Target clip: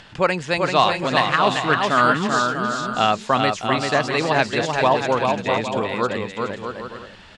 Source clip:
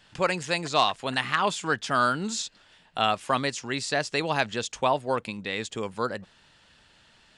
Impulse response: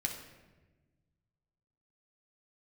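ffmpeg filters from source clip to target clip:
-af "acompressor=mode=upward:threshold=0.00708:ratio=2.5,aemphasis=mode=reproduction:type=50fm,aecho=1:1:390|643.5|808.3|915.4|985:0.631|0.398|0.251|0.158|0.1,volume=2"

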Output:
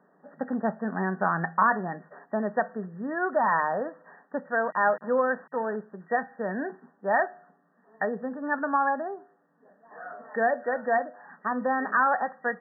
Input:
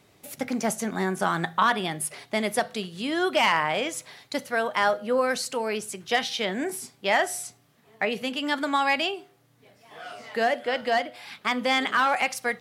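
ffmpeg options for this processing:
-filter_complex "[0:a]asettb=1/sr,asplit=3[s0][s1][s2];[s0]atrim=end=4.654[s3];[s1]atrim=start=4.65:end=5.76,asetpts=PTS-STARTPTS,afade=t=in:d=0.004:c=qsin,afade=t=out:st=1.106:d=0.004:c=qsin,aeval=exprs='val(0)*gte(abs(val(0)),0.0211)':c=same[s4];[s2]atrim=start=5.756[s5];[s3][s4]acrossfade=d=0.004:c1=hsin:c2=qsin[s6];[s6][s5]acrossfade=d=0.004:c1=qsin:c2=hsin,equalizer=f=340:t=o:w=0.37:g=-8,afftfilt=real='re*between(b*sr/4096,160,1900)':imag='im*between(b*sr/4096,160,1900)':win_size=4096:overlap=0.75"

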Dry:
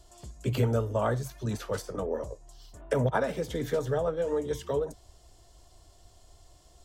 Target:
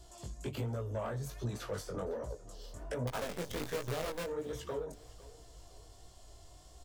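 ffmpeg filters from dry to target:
-filter_complex "[0:a]acompressor=threshold=0.0178:ratio=5,asoftclip=type=tanh:threshold=0.0266,asettb=1/sr,asplit=3[s0][s1][s2];[s0]atrim=end=3.074[s3];[s1]atrim=start=3.07:end=4.24,asetpts=PTS-STARTPTS,afade=t=in:d=0.004:c=qsin,afade=t=out:st=1.166:d=0.004:c=qsin,acrusher=bits=7:dc=4:mix=0:aa=0.000001[s4];[s2]atrim=start=4.236[s5];[s3][s4]acrossfade=d=0.004:c1=hsin:c2=qsin[s6];[s6][s5]acrossfade=d=0.004:c1=qsin:c2=hsin,flanger=delay=16:depth=6.7:speed=1.3,aecho=1:1:508|1016|1524:0.1|0.039|0.0152,volume=1.58"

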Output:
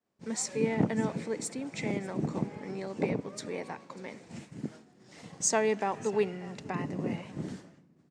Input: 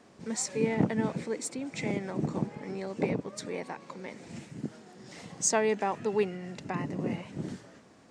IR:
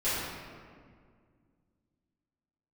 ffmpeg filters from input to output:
-filter_complex "[0:a]aecho=1:1:592:0.0891,agate=range=0.0224:threshold=0.00794:ratio=3:detection=peak,asplit=2[s0][s1];[1:a]atrim=start_sample=2205[s2];[s1][s2]afir=irnorm=-1:irlink=0,volume=0.0299[s3];[s0][s3]amix=inputs=2:normalize=0,volume=0.891"

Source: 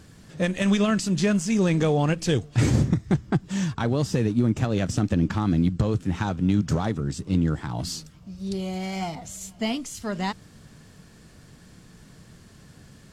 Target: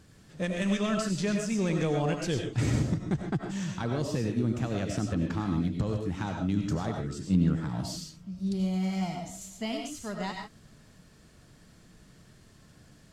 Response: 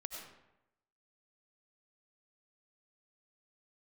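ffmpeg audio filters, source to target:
-filter_complex "[0:a]asettb=1/sr,asplit=3[s0][s1][s2];[s0]atrim=end=7.224[s3];[s1]atrim=start=7.22:end=9.42,asetpts=PTS-STARTPTS,afade=t=in:d=0.004:c=qsin,afade=t=out:st=2.196:d=0.004:c=qsin,equalizer=f=190:t=o:w=0.65:g=8.5[s4];[s2]atrim=start=9.416[s5];[s3][s4]acrossfade=d=0.004:c1=hsin:c2=qsin[s6];[s6][s5]acrossfade=d=0.004:c1=qsin:c2=hsin[s7];[1:a]atrim=start_sample=2205,afade=t=out:st=0.21:d=0.01,atrim=end_sample=9702[s8];[s7][s8]afir=irnorm=-1:irlink=0,volume=0.708"

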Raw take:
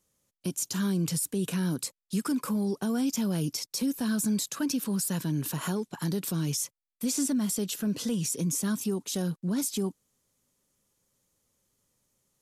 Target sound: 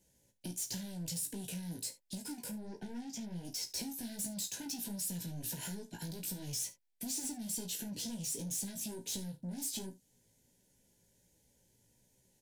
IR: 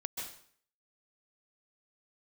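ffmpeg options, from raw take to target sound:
-filter_complex "[0:a]asettb=1/sr,asplit=3[s0][s1][s2];[s0]atrim=end=2.524[s3];[s1]atrim=start=2.52:end=3.45,asetpts=PTS-STARTPTS,afade=t=in:d=0.004:c=qsin,afade=t=out:st=0.926:d=0.004:c=qsin,aemphasis=mode=reproduction:type=75fm[s4];[s2]atrim=start=3.446[s5];[s3][s4]acrossfade=d=0.004:c1=hsin:c2=qsin[s6];[s6][s5]acrossfade=d=0.004:c1=qsin:c2=hsin,asplit=2[s7][s8];[s8]alimiter=level_in=2:limit=0.0631:level=0:latency=1:release=191,volume=0.501,volume=0.75[s9];[s7][s9]amix=inputs=2:normalize=0,asoftclip=type=tanh:threshold=0.0299,flanger=delay=15.5:depth=2.8:speed=1.4,acrossover=split=3100[s10][s11];[s10]acompressor=threshold=0.00501:ratio=6[s12];[s12][s11]amix=inputs=2:normalize=0,asuperstop=centerf=1200:order=12:qfactor=2.9,lowshelf=f=380:g=5,aecho=1:1:34|73:0.251|0.126"

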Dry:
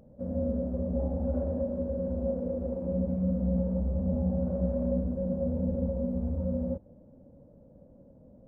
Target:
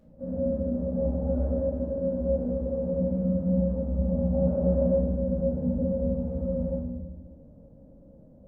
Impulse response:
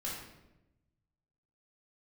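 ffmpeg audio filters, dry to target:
-filter_complex "[0:a]asettb=1/sr,asplit=3[s0][s1][s2];[s0]atrim=end=4.334[s3];[s1]atrim=start=4.33:end=4.98,asetpts=PTS-STARTPTS,afade=t=in:d=0.004:c=qsin,afade=t=out:st=0.646:d=0.004:c=qsin,equalizer=f=590:w=0.52:g=5.5[s4];[s2]atrim=start=4.976[s5];[s3][s4]acrossfade=d=0.004:c1=hsin:c2=qsin[s6];[s6][s5]acrossfade=d=0.004:c1=qsin:c2=hsin[s7];[1:a]atrim=start_sample=2205,asetrate=42336,aresample=44100[s8];[s7][s8]afir=irnorm=-1:irlink=0,volume=0.841"

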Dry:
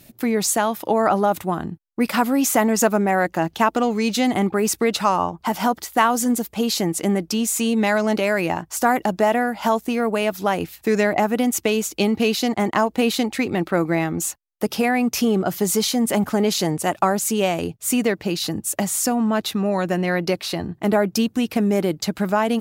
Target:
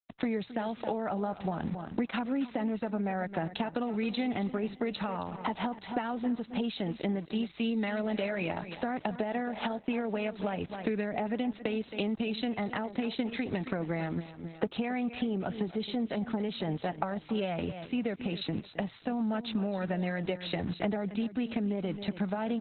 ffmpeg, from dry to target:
-filter_complex "[0:a]bandreject=f=1100:w=5.8,aeval=exprs='val(0)*gte(abs(val(0)),0.0133)':c=same,equalizer=f=350:t=o:w=0.25:g=-6.5,acrossover=split=270[s0][s1];[s1]acompressor=threshold=0.0891:ratio=8[s2];[s0][s2]amix=inputs=2:normalize=0,aecho=1:1:268|536|804:0.178|0.0427|0.0102,acompressor=threshold=0.0224:ratio=8,asplit=3[s3][s4][s5];[s3]afade=t=out:st=7.34:d=0.02[s6];[s4]highshelf=f=5300:g=9,afade=t=in:st=7.34:d=0.02,afade=t=out:st=9.74:d=0.02[s7];[s5]afade=t=in:st=9.74:d=0.02[s8];[s6][s7][s8]amix=inputs=3:normalize=0,aresample=22050,aresample=44100,volume=1.68" -ar 48000 -c:a libopus -b:a 8k

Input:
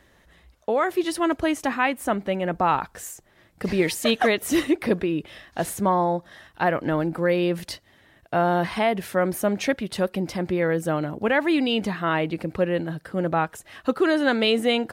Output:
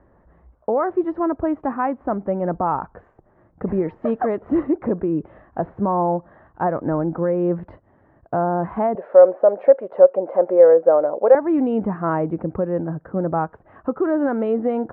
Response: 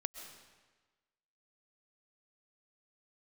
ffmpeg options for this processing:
-filter_complex "[0:a]lowpass=f=1200:w=0.5412,lowpass=f=1200:w=1.3066,alimiter=limit=0.168:level=0:latency=1:release=233,asettb=1/sr,asplit=3[s0][s1][s2];[s0]atrim=end=8.954[s3];[s1]atrim=start=8.95:end=11.35,asetpts=PTS-STARTPTS,afade=t=in:d=0.004:c=qsin,afade=t=out:st=2.396:d=0.004:c=qsin,highpass=f=540:t=q:w=5.3[s4];[s2]atrim=start=11.346[s5];[s3][s4]acrossfade=d=0.004:c1=hsin:c2=qsin[s6];[s6][s5]acrossfade=d=0.004:c1=qsin:c2=hsin,volume=1.58"

